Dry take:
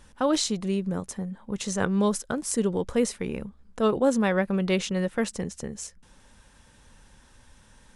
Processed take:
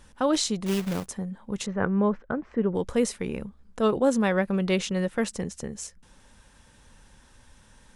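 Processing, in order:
0:00.66–0:01.06: log-companded quantiser 4 bits
0:01.66–0:02.75: low-pass filter 2,100 Hz 24 dB per octave

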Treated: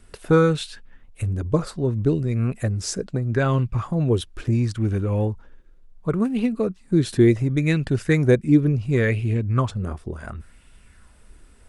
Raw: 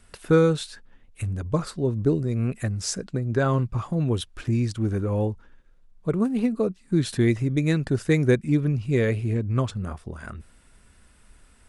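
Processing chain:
low-shelf EQ 120 Hz +6 dB
auto-filter bell 0.7 Hz 330–3,000 Hz +8 dB

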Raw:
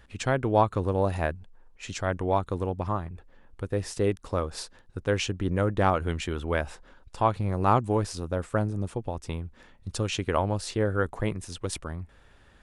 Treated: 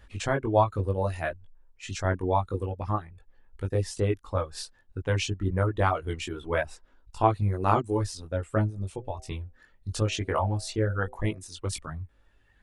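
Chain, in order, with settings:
reverb reduction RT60 1.9 s
multi-voice chorus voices 6, 0.62 Hz, delay 20 ms, depth 1.8 ms
0:08.97–0:11.38: hum removal 127.9 Hz, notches 6
level +3 dB

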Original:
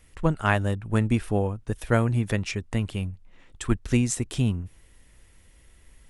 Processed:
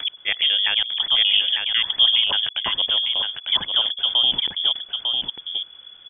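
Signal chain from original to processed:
slices reordered back to front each 83 ms, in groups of 3
brickwall limiter −15 dBFS, peak gain reduction 7.5 dB
single-tap delay 900 ms −5 dB
voice inversion scrambler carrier 3,400 Hz
level +5.5 dB

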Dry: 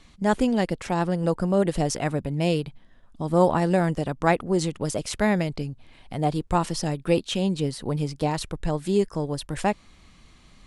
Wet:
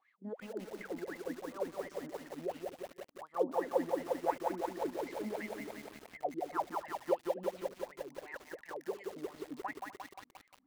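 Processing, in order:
low-shelf EQ 180 Hz −8.5 dB
LFO wah 2.8 Hz 240–2,100 Hz, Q 19
tape delay 248 ms, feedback 26%, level −15 dB, low-pass 1,900 Hz
feedback echo at a low word length 176 ms, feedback 80%, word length 9 bits, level −3 dB
level +1.5 dB

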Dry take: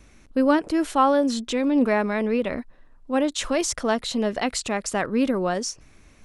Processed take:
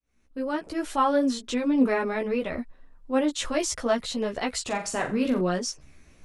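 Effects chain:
fade in at the beginning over 0.96 s
multi-voice chorus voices 4, 0.66 Hz, delay 14 ms, depth 3.2 ms
0:04.62–0:05.41: flutter between parallel walls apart 7.4 metres, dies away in 0.33 s

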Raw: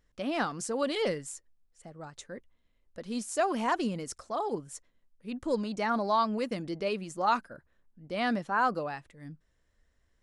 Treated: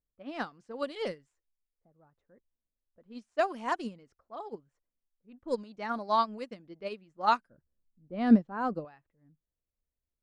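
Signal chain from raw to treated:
low-pass that shuts in the quiet parts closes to 720 Hz, open at −25 dBFS
0:07.48–0:08.85: tilt shelving filter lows +9 dB, about 660 Hz
expander for the loud parts 2.5 to 1, over −37 dBFS
level +6.5 dB

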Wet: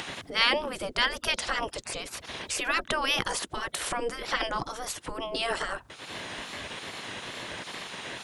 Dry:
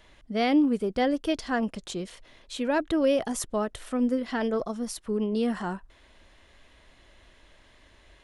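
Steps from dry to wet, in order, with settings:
in parallel at +1.5 dB: upward compression, threshold −27 dBFS
on the sum: gate on every frequency bin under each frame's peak −15 dB weak
tape wow and flutter 70 cents
level +5 dB

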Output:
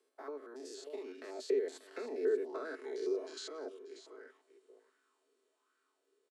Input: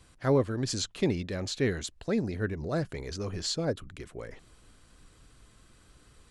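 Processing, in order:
spectrum averaged block by block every 100 ms
source passing by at 0:02.37, 18 m/s, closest 4.8 metres
Butterworth high-pass 260 Hz 96 dB per octave
parametric band 380 Hz +9 dB 0.22 octaves
comb filter 4.6 ms, depth 45%
downward compressor 4 to 1, threshold −42 dBFS, peak gain reduction 11 dB
single-tap delay 587 ms −12.5 dB
auto-filter bell 1.3 Hz 410–1,500 Hz +14 dB

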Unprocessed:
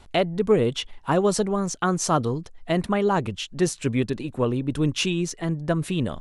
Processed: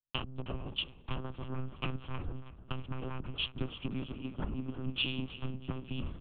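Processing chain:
lower of the sound and its delayed copy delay 0.33 ms
noise gate −37 dBFS, range −17 dB
downward compressor 12 to 1, threshold −31 dBFS, peak gain reduction 17.5 dB
amplitude modulation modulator 300 Hz, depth 85%
phaser with its sweep stopped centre 2,900 Hz, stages 8
repeating echo 326 ms, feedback 56%, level −9 dB
one-pitch LPC vocoder at 8 kHz 130 Hz
multiband upward and downward expander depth 100%
level +3.5 dB

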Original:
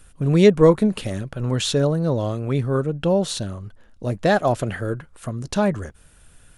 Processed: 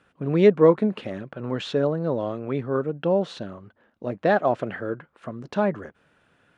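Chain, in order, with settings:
band-pass filter 210–2,400 Hz
level −1.5 dB

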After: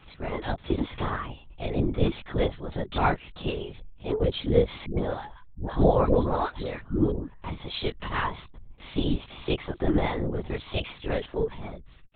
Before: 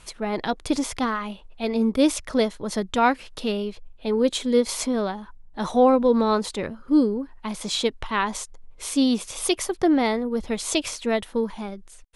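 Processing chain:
multi-voice chorus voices 4, 0.21 Hz, delay 23 ms, depth 2.1 ms
linear-prediction vocoder at 8 kHz whisper
0:04.86–0:07.12: all-pass dispersion highs, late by 119 ms, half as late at 590 Hz
level −1 dB

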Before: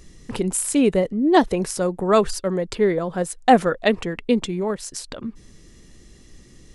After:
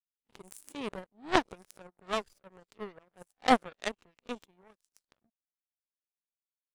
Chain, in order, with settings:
peak hold with a rise ahead of every peak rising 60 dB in 0.31 s
power curve on the samples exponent 3
level −1 dB

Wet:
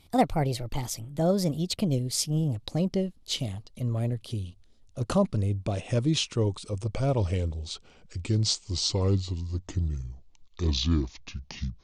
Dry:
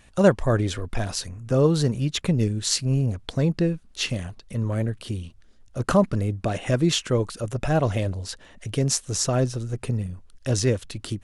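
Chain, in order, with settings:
gliding playback speed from 131% → 59%
graphic EQ with 15 bands 100 Hz +4 dB, 1,600 Hz −9 dB, 4,000 Hz +4 dB
level −5 dB

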